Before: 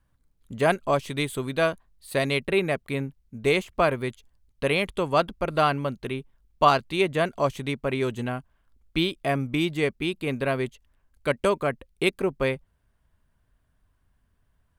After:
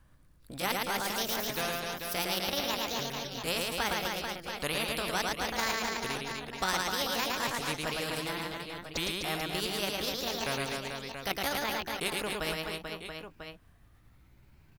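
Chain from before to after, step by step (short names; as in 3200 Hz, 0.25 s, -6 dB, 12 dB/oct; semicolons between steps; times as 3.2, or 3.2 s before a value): repeated pitch sweeps +9 st, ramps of 1.495 s; reverse bouncing-ball echo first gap 0.11 s, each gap 1.3×, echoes 5; spectral compressor 2:1; gain -8 dB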